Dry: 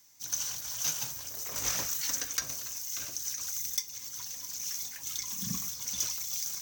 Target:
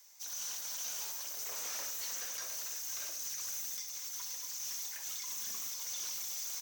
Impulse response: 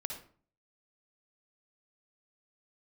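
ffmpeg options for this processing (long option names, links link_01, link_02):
-filter_complex "[0:a]highpass=frequency=400:width=0.5412,highpass=frequency=400:width=1.3066,alimiter=level_in=1.5dB:limit=-24dB:level=0:latency=1:release=39,volume=-1.5dB,asoftclip=type=tanh:threshold=-37.5dB,aecho=1:1:505:0.299,asplit=2[link_01][link_02];[1:a]atrim=start_sample=2205[link_03];[link_02][link_03]afir=irnorm=-1:irlink=0,volume=0.5dB[link_04];[link_01][link_04]amix=inputs=2:normalize=0,volume=-4.5dB"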